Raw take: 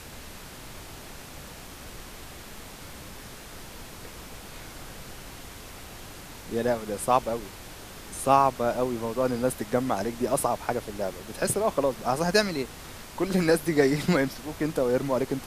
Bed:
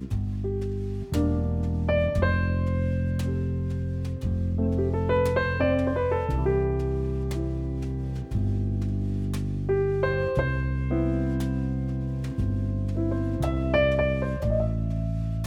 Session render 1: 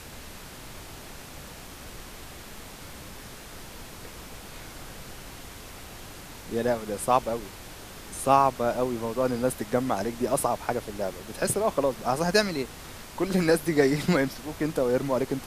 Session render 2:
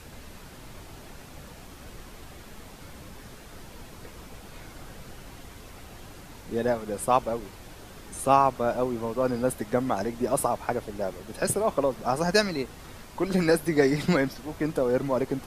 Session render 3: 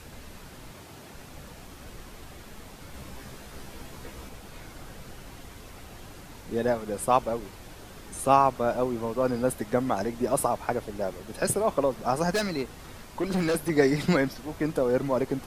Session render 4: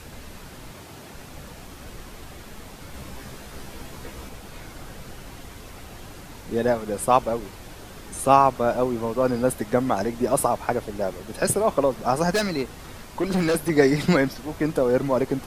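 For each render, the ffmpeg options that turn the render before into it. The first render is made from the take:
ffmpeg -i in.wav -af anull out.wav
ffmpeg -i in.wav -af "afftdn=noise_reduction=6:noise_floor=-44" out.wav
ffmpeg -i in.wav -filter_complex "[0:a]asettb=1/sr,asplit=3[link_01][link_02][link_03];[link_01]atrim=end=0.714[link_04];[link_02]atrim=start=0.71:end=1.14,asetpts=PTS-STARTPTS,afade=type=in:duration=0.004:curve=qsin,afade=type=out:start_time=0.426:duration=0.004:curve=qsin,highpass=92[link_05];[link_03]atrim=start=1.136[link_06];[link_04][link_05]acrossfade=duration=0.004:curve1=hsin:curve2=qsin[link_07];[link_07][link_06]acrossfade=duration=0.004:curve1=qsin:curve2=hsin,asettb=1/sr,asplit=3[link_08][link_09][link_10];[link_08]atrim=end=2.924[link_11];[link_09]atrim=start=2.92:end=4.29,asetpts=PTS-STARTPTS,afade=type=in:duration=0.004:curve=qsin,afade=type=out:start_time=1.366:duration=0.004:curve=qsin,asplit=2[link_12][link_13];[link_13]adelay=15,volume=-2.5dB[link_14];[link_12][link_14]amix=inputs=2:normalize=0,atrim=end_sample=60417[link_15];[link_10]atrim=start=4.286[link_16];[link_11][link_15]acrossfade=duration=0.004:curve1=hsin:curve2=qsin[link_17];[link_17][link_16]acrossfade=duration=0.004:curve1=qsin:curve2=hsin,asettb=1/sr,asplit=3[link_18][link_19][link_20];[link_18]atrim=end=12.324[link_21];[link_19]atrim=start=12.32:end=13.7,asetpts=PTS-STARTPTS,afade=type=in:duration=0.004:curve=qsin,afade=type=out:start_time=1.376:duration=0.004:curve=qsin,volume=22dB,asoftclip=hard,volume=-22dB[link_22];[link_20]atrim=start=13.696[link_23];[link_21][link_22]acrossfade=duration=0.004:curve1=hsin:curve2=qsin[link_24];[link_24][link_23]acrossfade=duration=0.004:curve1=qsin:curve2=hsin" out.wav
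ffmpeg -i in.wav -af "volume=4dB" out.wav

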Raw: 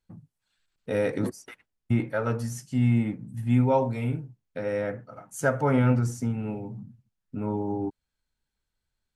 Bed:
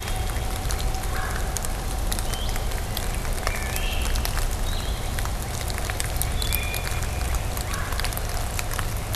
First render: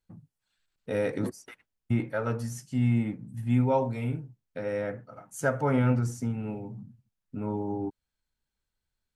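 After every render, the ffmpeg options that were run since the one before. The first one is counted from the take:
ffmpeg -i in.wav -af "volume=-2.5dB" out.wav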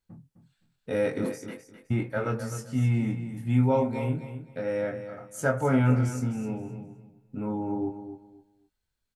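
ffmpeg -i in.wav -filter_complex "[0:a]asplit=2[link_01][link_02];[link_02]adelay=23,volume=-5dB[link_03];[link_01][link_03]amix=inputs=2:normalize=0,asplit=2[link_04][link_05];[link_05]aecho=0:1:258|516|774:0.299|0.0687|0.0158[link_06];[link_04][link_06]amix=inputs=2:normalize=0" out.wav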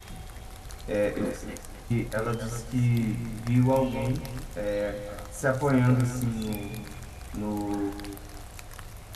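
ffmpeg -i in.wav -i bed.wav -filter_complex "[1:a]volume=-15.5dB[link_01];[0:a][link_01]amix=inputs=2:normalize=0" out.wav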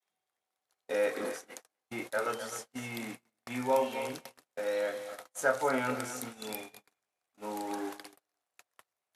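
ffmpeg -i in.wav -af "highpass=500,agate=range=-38dB:threshold=-41dB:ratio=16:detection=peak" out.wav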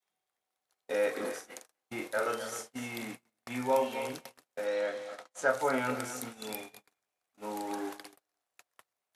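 ffmpeg -i in.wav -filter_complex "[0:a]asettb=1/sr,asplit=3[link_01][link_02][link_03];[link_01]atrim=end=1.324[link_04];[link_02]atrim=start=1.32:end=3.02,asetpts=PTS-STARTPTS,afade=type=in:duration=0.004:curve=qsin,afade=type=out:start_time=1.696:duration=0.004:curve=qsin,asplit=2[link_05][link_06];[link_06]adelay=45,volume=-8dB[link_07];[link_05][link_07]amix=inputs=2:normalize=0,atrim=end_sample=74970[link_08];[link_03]atrim=start=3.016[link_09];[link_04][link_08]acrossfade=duration=0.004:curve1=hsin:curve2=qsin[link_10];[link_10][link_09]acrossfade=duration=0.004:curve1=qsin:curve2=hsin,asettb=1/sr,asplit=3[link_11][link_12][link_13];[link_11]atrim=end=4.664[link_14];[link_12]atrim=start=4.66:end=5.49,asetpts=PTS-STARTPTS,afade=type=in:duration=0.004:curve=qsin,afade=type=out:start_time=0.826:duration=0.004:curve=qsin,highpass=120,lowpass=6800[link_15];[link_13]atrim=start=5.486[link_16];[link_14][link_15]acrossfade=duration=0.004:curve1=hsin:curve2=qsin[link_17];[link_17][link_16]acrossfade=duration=0.004:curve1=qsin:curve2=hsin" out.wav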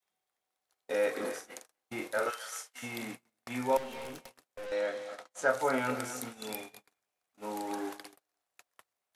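ffmpeg -i in.wav -filter_complex "[0:a]asplit=3[link_01][link_02][link_03];[link_01]afade=type=out:start_time=2.29:duration=0.02[link_04];[link_02]highpass=1200,afade=type=in:start_time=2.29:duration=0.02,afade=type=out:start_time=2.82:duration=0.02[link_05];[link_03]afade=type=in:start_time=2.82:duration=0.02[link_06];[link_04][link_05][link_06]amix=inputs=3:normalize=0,asettb=1/sr,asplit=3[link_07][link_08][link_09];[link_07]atrim=end=3.774[link_10];[link_08]atrim=start=3.77:end=4.72,asetpts=PTS-STARTPTS,afade=type=in:duration=0.004:curve=qsin,afade=type=out:start_time=0.946:duration=0.004:curve=qsin,aeval=exprs='(tanh(89.1*val(0)+0.4)-tanh(0.4))/89.1':channel_layout=same[link_11];[link_09]atrim=start=4.716[link_12];[link_10][link_11]acrossfade=duration=0.004:curve1=hsin:curve2=qsin[link_13];[link_13][link_12]acrossfade=duration=0.004:curve1=qsin:curve2=hsin" out.wav

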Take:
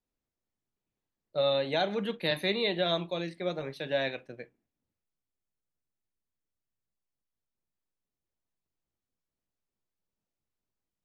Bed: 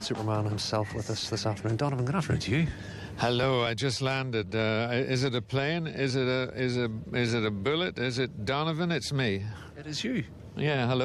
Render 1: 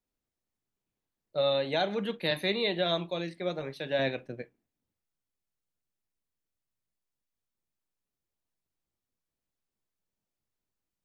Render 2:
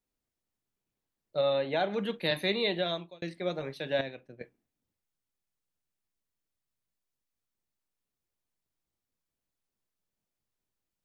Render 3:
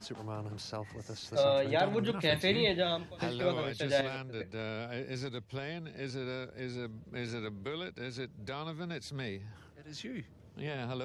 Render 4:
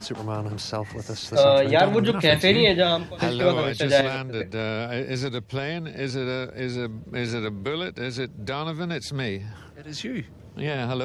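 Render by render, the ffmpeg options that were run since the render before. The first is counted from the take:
ffmpeg -i in.wav -filter_complex "[0:a]asettb=1/sr,asplit=3[link_01][link_02][link_03];[link_01]atrim=end=3.994[link_04];[link_02]atrim=start=3.99:end=4.42,asetpts=PTS-STARTPTS,afade=type=in:duration=0.004:curve=qsin,afade=type=out:start_time=0.426:duration=0.004:curve=qsin,lowshelf=frequency=460:gain=8[link_05];[link_03]atrim=start=4.416[link_06];[link_04][link_05]acrossfade=duration=0.004:curve1=hsin:curve2=qsin[link_07];[link_07][link_06]acrossfade=duration=0.004:curve1=qsin:curve2=hsin" out.wav
ffmpeg -i in.wav -filter_complex "[0:a]asettb=1/sr,asplit=3[link_01][link_02][link_03];[link_01]atrim=end=1.414[link_04];[link_02]atrim=start=1.41:end=1.94,asetpts=PTS-STARTPTS,afade=type=in:duration=0.004:curve=qsin,afade=type=out:start_time=0.526:duration=0.004:curve=qsin,bass=frequency=250:gain=-2,treble=frequency=4000:gain=-13[link_05];[link_03]atrim=start=1.936[link_06];[link_04][link_05]acrossfade=duration=0.004:curve1=hsin:curve2=qsin[link_07];[link_07][link_06]acrossfade=duration=0.004:curve1=qsin:curve2=hsin,asplit=4[link_08][link_09][link_10][link_11];[link_08]atrim=end=3.22,asetpts=PTS-STARTPTS,afade=type=out:start_time=2.73:duration=0.49[link_12];[link_09]atrim=start=3.22:end=4.012,asetpts=PTS-STARTPTS,afade=type=in:duration=0.004:curve=hsin[link_13];[link_10]atrim=start=4.008:end=4.412,asetpts=PTS-STARTPTS,volume=-10dB[link_14];[link_11]atrim=start=4.408[link_15];[link_12][link_13]concat=n=2:v=0:a=1[link_16];[link_16][link_14]acrossfade=duration=0.004:curve1=hsin:curve2=hsin[link_17];[link_17][link_15]acrossfade=duration=0.004:curve1=hsin:curve2=hsin" out.wav
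ffmpeg -i in.wav -i bed.wav -filter_complex "[1:a]volume=-11.5dB[link_01];[0:a][link_01]amix=inputs=2:normalize=0" out.wav
ffmpeg -i in.wav -af "volume=11dB" out.wav

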